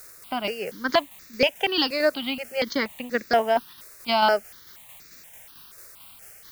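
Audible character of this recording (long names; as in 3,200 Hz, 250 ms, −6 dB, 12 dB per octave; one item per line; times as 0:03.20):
a quantiser's noise floor 8 bits, dither triangular
tremolo saw down 4.5 Hz, depth 40%
notches that jump at a steady rate 4.2 Hz 840–3,100 Hz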